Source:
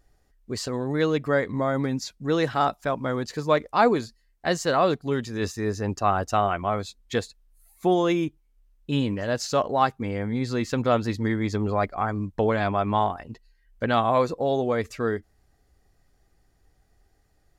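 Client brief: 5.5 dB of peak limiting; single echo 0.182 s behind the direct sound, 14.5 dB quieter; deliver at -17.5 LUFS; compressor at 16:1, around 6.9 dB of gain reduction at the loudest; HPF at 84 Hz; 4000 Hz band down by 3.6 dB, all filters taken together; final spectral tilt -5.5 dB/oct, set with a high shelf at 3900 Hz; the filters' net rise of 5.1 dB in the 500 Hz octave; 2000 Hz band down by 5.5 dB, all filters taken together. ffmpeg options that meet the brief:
-af "highpass=84,equalizer=f=500:t=o:g=6.5,equalizer=f=2k:t=o:g=-8.5,highshelf=f=3.9k:g=8.5,equalizer=f=4k:t=o:g=-7.5,acompressor=threshold=-18dB:ratio=16,alimiter=limit=-15dB:level=0:latency=1,aecho=1:1:182:0.188,volume=9dB"

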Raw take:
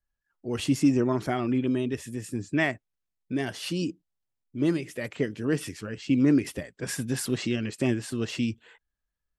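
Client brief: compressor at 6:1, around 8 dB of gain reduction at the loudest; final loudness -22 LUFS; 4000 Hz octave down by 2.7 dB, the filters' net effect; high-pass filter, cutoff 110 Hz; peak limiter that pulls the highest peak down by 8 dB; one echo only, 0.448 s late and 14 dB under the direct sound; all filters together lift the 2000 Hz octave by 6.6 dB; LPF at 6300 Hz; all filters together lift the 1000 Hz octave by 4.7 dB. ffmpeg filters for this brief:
-af "highpass=110,lowpass=6.3k,equalizer=f=1k:t=o:g=5,equalizer=f=2k:t=o:g=8,equalizer=f=4k:t=o:g=-7.5,acompressor=threshold=-25dB:ratio=6,alimiter=limit=-22dB:level=0:latency=1,aecho=1:1:448:0.2,volume=11.5dB"

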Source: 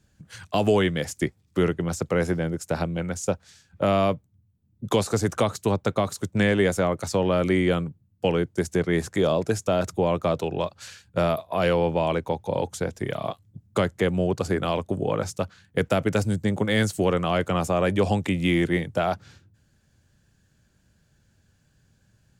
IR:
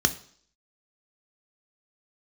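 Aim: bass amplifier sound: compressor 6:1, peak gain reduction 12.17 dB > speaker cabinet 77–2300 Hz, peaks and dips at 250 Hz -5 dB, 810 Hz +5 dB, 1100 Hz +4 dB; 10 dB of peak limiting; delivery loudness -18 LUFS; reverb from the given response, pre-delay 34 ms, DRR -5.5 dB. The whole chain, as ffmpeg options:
-filter_complex "[0:a]alimiter=limit=-18.5dB:level=0:latency=1,asplit=2[a][b];[1:a]atrim=start_sample=2205,adelay=34[c];[b][c]afir=irnorm=-1:irlink=0,volume=-6.5dB[d];[a][d]amix=inputs=2:normalize=0,acompressor=threshold=-23dB:ratio=6,highpass=f=77:w=0.5412,highpass=f=77:w=1.3066,equalizer=f=250:t=q:w=4:g=-5,equalizer=f=810:t=q:w=4:g=5,equalizer=f=1.1k:t=q:w=4:g=4,lowpass=f=2.3k:w=0.5412,lowpass=f=2.3k:w=1.3066,volume=10dB"

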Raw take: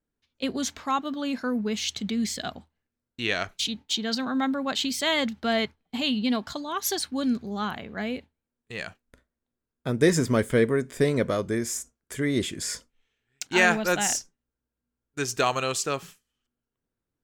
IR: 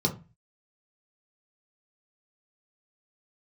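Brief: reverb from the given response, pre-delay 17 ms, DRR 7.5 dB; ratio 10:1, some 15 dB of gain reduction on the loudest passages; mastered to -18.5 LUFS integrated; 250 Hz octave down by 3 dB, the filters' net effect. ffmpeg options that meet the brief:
-filter_complex "[0:a]equalizer=f=250:t=o:g=-3.5,acompressor=threshold=-31dB:ratio=10,asplit=2[a][b];[1:a]atrim=start_sample=2205,adelay=17[c];[b][c]afir=irnorm=-1:irlink=0,volume=-16.5dB[d];[a][d]amix=inputs=2:normalize=0,volume=15dB"

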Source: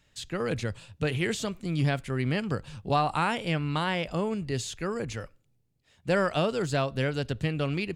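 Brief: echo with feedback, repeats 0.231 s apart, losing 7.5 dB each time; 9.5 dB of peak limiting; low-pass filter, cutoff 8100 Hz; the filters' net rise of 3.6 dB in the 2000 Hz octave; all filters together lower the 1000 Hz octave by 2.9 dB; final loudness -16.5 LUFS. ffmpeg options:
-af "lowpass=8.1k,equalizer=f=1k:t=o:g=-6,equalizer=f=2k:t=o:g=6.5,alimiter=limit=-22.5dB:level=0:latency=1,aecho=1:1:231|462|693|924|1155:0.422|0.177|0.0744|0.0312|0.0131,volume=15.5dB"

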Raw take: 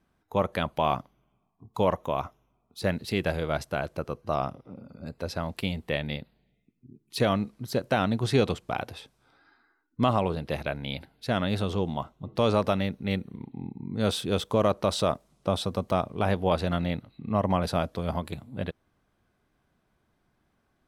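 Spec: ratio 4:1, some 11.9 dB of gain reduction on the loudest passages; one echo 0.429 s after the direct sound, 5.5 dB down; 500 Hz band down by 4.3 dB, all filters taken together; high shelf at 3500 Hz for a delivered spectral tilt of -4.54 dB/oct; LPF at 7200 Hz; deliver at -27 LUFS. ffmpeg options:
-af "lowpass=7.2k,equalizer=f=500:t=o:g=-5.5,highshelf=f=3.5k:g=3.5,acompressor=threshold=-35dB:ratio=4,aecho=1:1:429:0.531,volume=12dB"

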